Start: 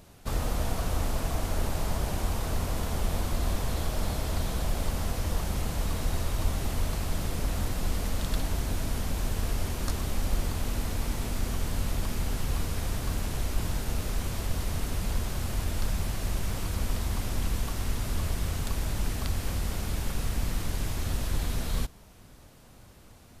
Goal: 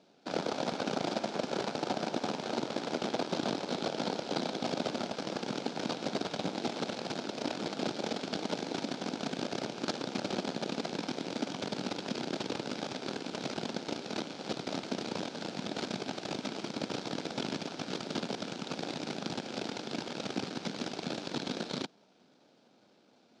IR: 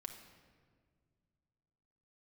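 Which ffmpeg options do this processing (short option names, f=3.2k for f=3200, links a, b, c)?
-af "aeval=exprs='0.2*(cos(1*acos(clip(val(0)/0.2,-1,1)))-cos(1*PI/2))+0.0501*(cos(6*acos(clip(val(0)/0.2,-1,1)))-cos(6*PI/2))+0.0447*(cos(7*acos(clip(val(0)/0.2,-1,1)))-cos(7*PI/2))':c=same,highpass=f=210:w=0.5412,highpass=f=210:w=1.3066,equalizer=f=1.1k:t=q:w=4:g=-9,equalizer=f=1.9k:t=q:w=4:g=-9,equalizer=f=2.8k:t=q:w=4:g=-4,lowpass=f=5.1k:w=0.5412,lowpass=f=5.1k:w=1.3066"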